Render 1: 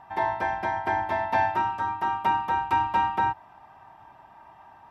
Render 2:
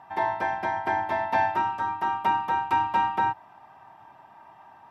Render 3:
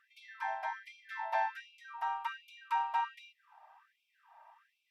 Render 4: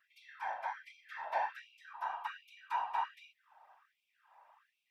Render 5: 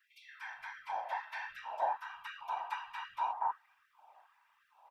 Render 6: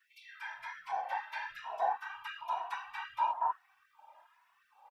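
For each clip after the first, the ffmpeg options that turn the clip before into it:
-af "highpass=110"
-af "afftfilt=real='re*gte(b*sr/1024,550*pow(2200/550,0.5+0.5*sin(2*PI*1.3*pts/sr)))':imag='im*gte(b*sr/1024,550*pow(2200/550,0.5+0.5*sin(2*PI*1.3*pts/sr)))':win_size=1024:overlap=0.75,volume=0.376"
-af "afftfilt=real='hypot(re,im)*cos(2*PI*random(0))':imag='hypot(re,im)*sin(2*PI*random(1))':win_size=512:overlap=0.75,volume=1.41"
-filter_complex "[0:a]acrossover=split=160|1300[s0][s1][s2];[s0]adelay=150[s3];[s1]adelay=470[s4];[s3][s4][s2]amix=inputs=3:normalize=0,volume=1.41"
-filter_complex "[0:a]asplit=2[s0][s1];[s1]adelay=2.3,afreqshift=1.1[s2];[s0][s2]amix=inputs=2:normalize=1,volume=1.78"

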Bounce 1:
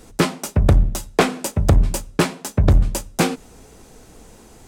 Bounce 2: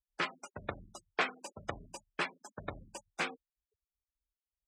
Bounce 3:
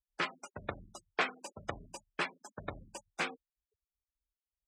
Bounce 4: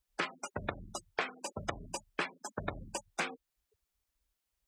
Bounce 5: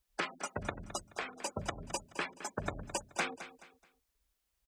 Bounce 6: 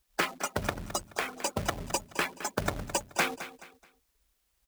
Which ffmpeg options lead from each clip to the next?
-af "flanger=delay=5.1:depth=6.1:regen=-74:speed=0.44:shape=sinusoidal,afftfilt=real='re*gte(hypot(re,im),0.0316)':imag='im*gte(hypot(re,im),0.0316)':win_size=1024:overlap=0.75,bandpass=f=2000:t=q:w=1:csg=0,volume=0.631"
-af anull
-af "acompressor=threshold=0.00631:ratio=4,volume=3.16"
-af "alimiter=limit=0.0708:level=0:latency=1:release=230,aecho=1:1:214|428|642:0.211|0.0655|0.0203,volume=1.33"
-af "acrusher=bits=2:mode=log:mix=0:aa=0.000001,volume=2.11"

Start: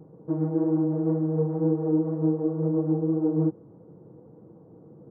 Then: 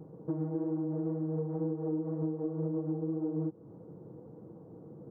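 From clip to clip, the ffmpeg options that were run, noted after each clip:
-af "acompressor=threshold=0.0282:ratio=6"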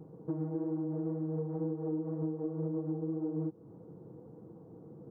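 -af "bandreject=f=580:w=12,volume=0.841"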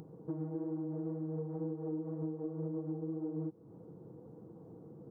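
-af "acompressor=mode=upward:threshold=0.00708:ratio=2.5,volume=0.668"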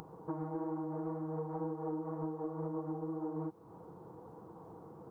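-af "equalizer=f=125:t=o:w=1:g=-10,equalizer=f=250:t=o:w=1:g=-9,equalizer=f=500:t=o:w=1:g=-6,equalizer=f=1000:t=o:w=1:g=9,volume=2.51"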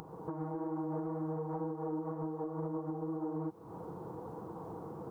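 -af "alimiter=level_in=4.47:limit=0.0631:level=0:latency=1:release=352,volume=0.224,volume=2.37"

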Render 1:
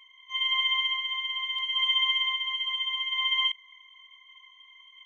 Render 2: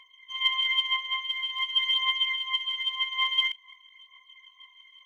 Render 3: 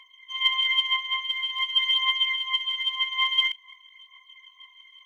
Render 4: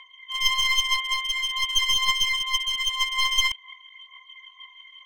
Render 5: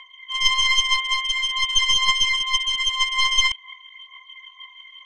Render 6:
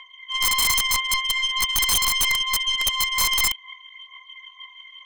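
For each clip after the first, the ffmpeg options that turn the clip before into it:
-af "aphaser=in_gain=1:out_gain=1:delay=2.1:decay=0.58:speed=0.48:type=triangular,volume=0.841"
-af "highpass=570,volume=1.33"
-af "aemphasis=mode=reproduction:type=50fm,aeval=exprs='clip(val(0),-1,0.0224)':c=same,volume=2"
-af "lowpass=f=8500:w=0.5412,lowpass=f=8500:w=1.3066,volume=1.5"
-af "aeval=exprs='(mod(4.22*val(0)+1,2)-1)/4.22':c=same"

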